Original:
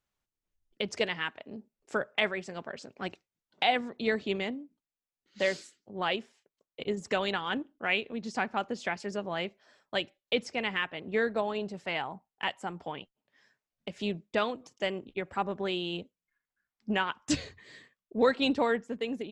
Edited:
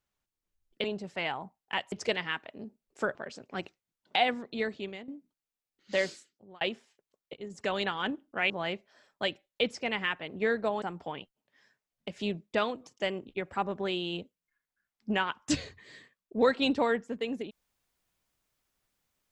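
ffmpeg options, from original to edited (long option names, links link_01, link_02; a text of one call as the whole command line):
ffmpeg -i in.wav -filter_complex "[0:a]asplit=9[link_01][link_02][link_03][link_04][link_05][link_06][link_07][link_08][link_09];[link_01]atrim=end=0.842[link_10];[link_02]atrim=start=11.538:end=12.622[link_11];[link_03]atrim=start=0.838:end=2.072[link_12];[link_04]atrim=start=2.618:end=4.55,asetpts=PTS-STARTPTS,afade=type=out:start_time=1.162:duration=0.77:silence=0.211349[link_13];[link_05]atrim=start=4.55:end=6.08,asetpts=PTS-STARTPTS,afade=type=in:duration=0.004:curve=hsin:silence=0.211349,afade=type=out:start_time=1.02:duration=0.51[link_14];[link_06]atrim=start=6.08:end=6.81,asetpts=PTS-STARTPTS,afade=type=in:duration=0.004:curve=hsin,afade=type=out:start_time=0.726:duration=0.004:curve=hsin:silence=0.141254[link_15];[link_07]atrim=start=6.81:end=7.972,asetpts=PTS-STARTPTS,afade=type=in:duration=0.47:silence=0.141254[link_16];[link_08]atrim=start=9.218:end=11.542[link_17];[link_09]atrim=start=12.618[link_18];[link_10][link_11]acrossfade=duration=0.004:curve1=hsin:curve2=hsin[link_19];[link_19][link_12]acrossfade=duration=0.004:curve1=hsin:curve2=hsin[link_20];[link_13][link_14][link_15][link_16]concat=n=4:v=0:a=1[link_21];[link_20][link_21]acrossfade=duration=0.004:curve1=hsin:curve2=hsin[link_22];[link_22][link_17]acrossfade=duration=0.004:curve1=hsin:curve2=hsin[link_23];[link_23][link_18]acrossfade=duration=0.004:curve1=hsin:curve2=hsin" out.wav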